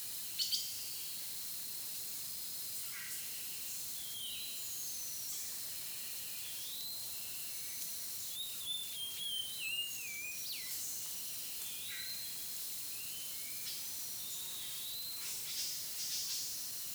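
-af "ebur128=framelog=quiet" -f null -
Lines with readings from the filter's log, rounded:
Integrated loudness:
  I:         -39.0 LUFS
  Threshold: -49.0 LUFS
Loudness range:
  LRA:         1.3 LU
  Threshold: -59.2 LUFS
  LRA low:   -39.7 LUFS
  LRA high:  -38.4 LUFS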